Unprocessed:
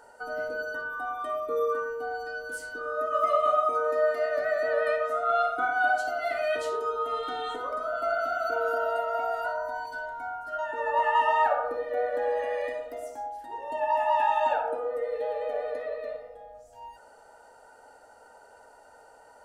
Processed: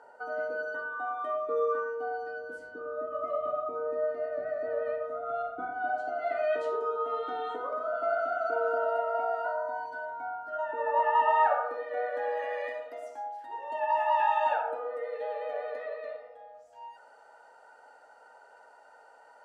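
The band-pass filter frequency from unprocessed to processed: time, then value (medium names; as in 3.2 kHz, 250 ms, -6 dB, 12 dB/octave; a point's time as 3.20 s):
band-pass filter, Q 0.54
1.89 s 750 Hz
3.17 s 180 Hz
5.76 s 180 Hz
6.41 s 570 Hz
11.15 s 570 Hz
11.67 s 1.5 kHz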